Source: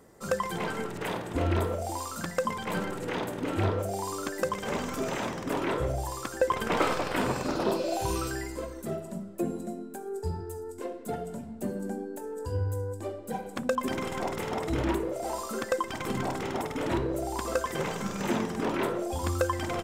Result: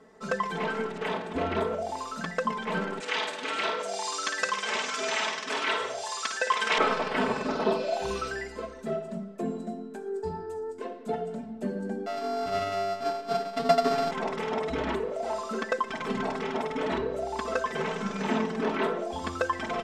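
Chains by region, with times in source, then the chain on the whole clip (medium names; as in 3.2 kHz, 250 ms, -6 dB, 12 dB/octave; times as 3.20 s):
3.00–6.78 s: frequency weighting ITU-R 468 + flutter echo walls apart 9.4 m, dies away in 0.41 s
12.06–14.11 s: sorted samples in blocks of 64 samples + treble shelf 9.4 kHz +4.5 dB + comb 7.1 ms, depth 82%
whole clip: low-pass 4.4 kHz 12 dB/octave; bass shelf 130 Hz -11.5 dB; comb 4.6 ms, depth 89%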